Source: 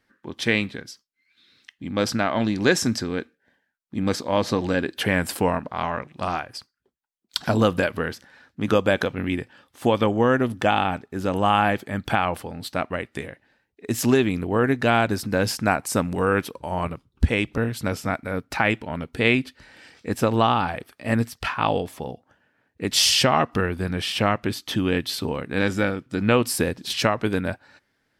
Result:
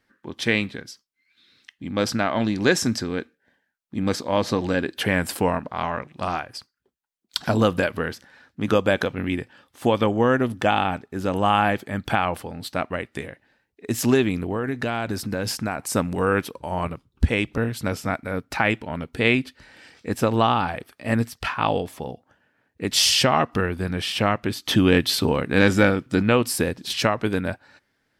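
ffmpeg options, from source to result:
ffmpeg -i in.wav -filter_complex "[0:a]asettb=1/sr,asplit=3[link_01][link_02][link_03];[link_01]atrim=end=14.424[link_04];[link_02]atrim=start=14.42:end=15.79,asetpts=PTS-STARTPTS,afade=type=in:duration=0.004:curve=qsin,afade=type=out:start_time=1.366:duration=0.004:curve=qsin,acompressor=threshold=-21dB:ratio=6:attack=3.2:release=140:knee=1:detection=peak[link_05];[link_03]atrim=start=15.786[link_06];[link_04][link_05]acrossfade=duration=0.004:curve1=hsin:curve2=qsin[link_07];[link_07][link_06]acrossfade=duration=0.004:curve1=qsin:curve2=hsin,asplit=3[link_08][link_09][link_10];[link_08]afade=type=out:start_time=24.64:duration=0.02[link_11];[link_09]acontrast=51,afade=type=in:start_time=24.64:duration=0.02,afade=type=out:start_time=26.21:duration=0.02[link_12];[link_10]afade=type=in:start_time=26.21:duration=0.02[link_13];[link_11][link_12][link_13]amix=inputs=3:normalize=0" out.wav

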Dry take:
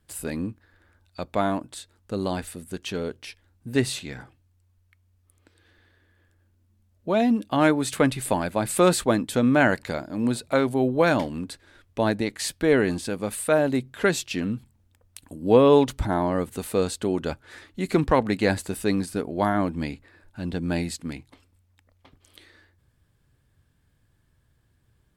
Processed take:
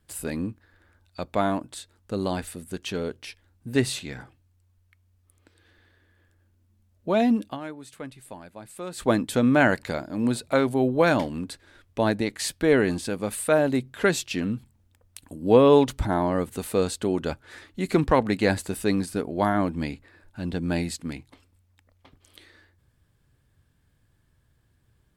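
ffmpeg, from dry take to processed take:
ffmpeg -i in.wav -filter_complex "[0:a]asplit=3[link_01][link_02][link_03];[link_01]atrim=end=7.61,asetpts=PTS-STARTPTS,afade=type=out:start_time=7.48:duration=0.13:curve=qua:silence=0.133352[link_04];[link_02]atrim=start=7.61:end=8.92,asetpts=PTS-STARTPTS,volume=-17.5dB[link_05];[link_03]atrim=start=8.92,asetpts=PTS-STARTPTS,afade=type=in:duration=0.13:curve=qua:silence=0.133352[link_06];[link_04][link_05][link_06]concat=n=3:v=0:a=1" out.wav

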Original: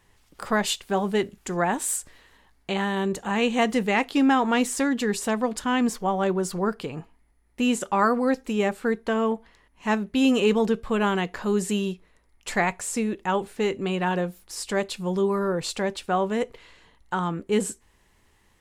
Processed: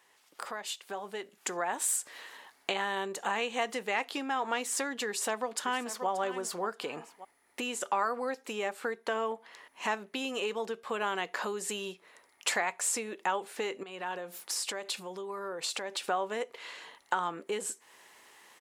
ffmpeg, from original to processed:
ffmpeg -i in.wav -filter_complex "[0:a]asplit=2[link_01][link_02];[link_02]afade=type=in:start_time=5.08:duration=0.01,afade=type=out:start_time=6.08:duration=0.01,aecho=0:1:580|1160:0.237137|0.0355706[link_03];[link_01][link_03]amix=inputs=2:normalize=0,asettb=1/sr,asplit=3[link_04][link_05][link_06];[link_04]atrim=end=13.834[link_07];[link_05]atrim=start=13.83:end=16.07,asetpts=PTS-STARTPTS,afade=type=in:duration=0.004:curve=qsin,afade=type=out:start_time=2.236:duration=0.004:curve=qsin,acompressor=threshold=-38dB:ratio=20:attack=3.2:release=140:knee=1:detection=peak[link_08];[link_06]atrim=start=16.066[link_09];[link_07][link_08]acrossfade=duration=0.004:curve1=hsin:curve2=qsin[link_10];[link_10][link_09]acrossfade=duration=0.004:curve1=qsin:curve2=hsin,acompressor=threshold=-36dB:ratio=6,highpass=510,dynaudnorm=framelen=520:gausssize=5:maxgain=9dB" out.wav

